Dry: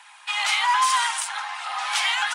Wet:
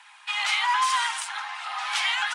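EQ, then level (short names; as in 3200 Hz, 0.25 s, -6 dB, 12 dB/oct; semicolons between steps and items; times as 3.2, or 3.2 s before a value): HPF 1000 Hz 6 dB/oct; high shelf 6400 Hz -9.5 dB; 0.0 dB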